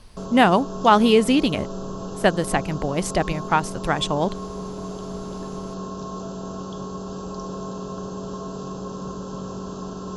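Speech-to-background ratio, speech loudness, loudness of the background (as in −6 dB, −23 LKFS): 12.5 dB, −20.5 LKFS, −33.0 LKFS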